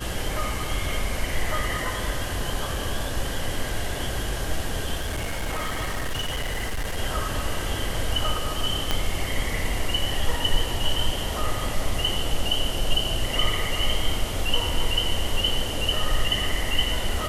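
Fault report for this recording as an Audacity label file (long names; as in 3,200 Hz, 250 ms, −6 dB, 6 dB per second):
4.990000	6.980000	clipping −23.5 dBFS
8.910000	8.910000	click −7 dBFS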